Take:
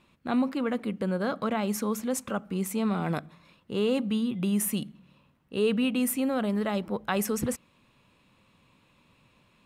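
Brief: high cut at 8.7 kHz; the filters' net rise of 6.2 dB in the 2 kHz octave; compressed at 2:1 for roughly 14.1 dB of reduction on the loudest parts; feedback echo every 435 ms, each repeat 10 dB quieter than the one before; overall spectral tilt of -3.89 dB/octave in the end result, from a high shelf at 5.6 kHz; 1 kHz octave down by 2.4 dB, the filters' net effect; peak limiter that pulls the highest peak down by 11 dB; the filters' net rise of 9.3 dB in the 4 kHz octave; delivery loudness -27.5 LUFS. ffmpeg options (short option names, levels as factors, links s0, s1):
-af "lowpass=8700,equalizer=f=1000:t=o:g=-6,equalizer=f=2000:t=o:g=6.5,equalizer=f=4000:t=o:g=8,highshelf=f=5600:g=7.5,acompressor=threshold=0.00398:ratio=2,alimiter=level_in=2.51:limit=0.0631:level=0:latency=1,volume=0.398,aecho=1:1:435|870|1305|1740:0.316|0.101|0.0324|0.0104,volume=5.62"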